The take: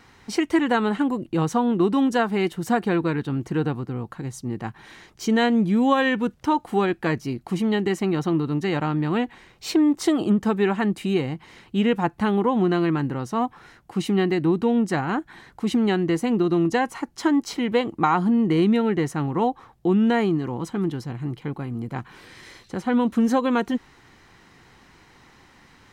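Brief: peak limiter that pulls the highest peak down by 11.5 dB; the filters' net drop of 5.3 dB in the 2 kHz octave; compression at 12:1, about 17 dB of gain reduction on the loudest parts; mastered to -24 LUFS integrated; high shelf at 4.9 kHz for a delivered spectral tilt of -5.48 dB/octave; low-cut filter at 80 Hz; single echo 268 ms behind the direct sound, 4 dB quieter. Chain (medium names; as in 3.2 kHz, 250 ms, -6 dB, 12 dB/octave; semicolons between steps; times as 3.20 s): high-pass 80 Hz; peaking EQ 2 kHz -7.5 dB; treble shelf 4.9 kHz +5.5 dB; compression 12:1, threshold -33 dBFS; peak limiter -33.5 dBFS; delay 268 ms -4 dB; trim +16.5 dB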